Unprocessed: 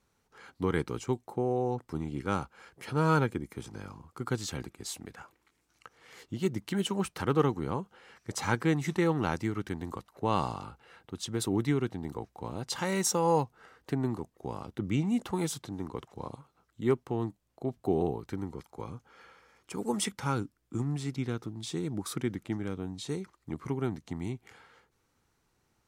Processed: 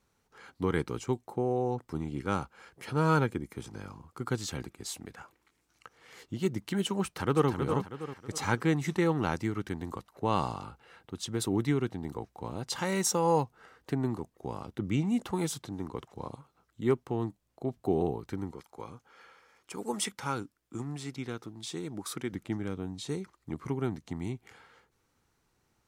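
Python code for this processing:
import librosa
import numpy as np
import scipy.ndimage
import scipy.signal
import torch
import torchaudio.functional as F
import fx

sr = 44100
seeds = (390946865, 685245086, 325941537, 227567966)

y = fx.echo_throw(x, sr, start_s=7.04, length_s=0.45, ms=320, feedback_pct=40, wet_db=-6.0)
y = fx.low_shelf(y, sr, hz=250.0, db=-9.0, at=(18.51, 22.33))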